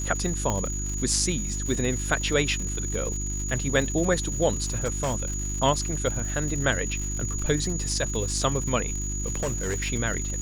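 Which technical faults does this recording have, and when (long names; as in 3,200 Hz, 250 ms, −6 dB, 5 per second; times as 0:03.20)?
surface crackle 190 per second −32 dBFS
mains hum 50 Hz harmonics 7 −31 dBFS
whistle 6,800 Hz −32 dBFS
0:00.50: click −13 dBFS
0:04.84–0:05.30: clipping −22 dBFS
0:09.40–0:09.89: clipping −23 dBFS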